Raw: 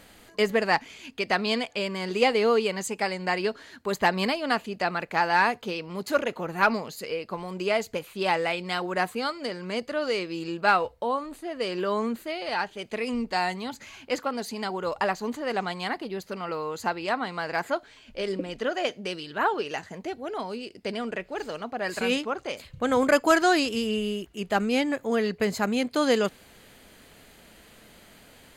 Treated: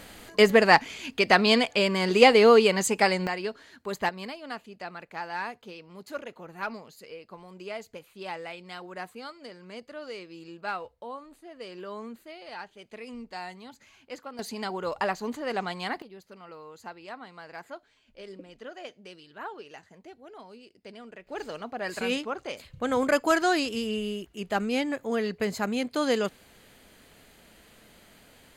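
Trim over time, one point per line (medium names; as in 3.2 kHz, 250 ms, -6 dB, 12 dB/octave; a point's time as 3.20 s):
+5.5 dB
from 3.27 s -5 dB
from 4.09 s -12 dB
from 14.39 s -2 dB
from 16.02 s -14 dB
from 21.27 s -3 dB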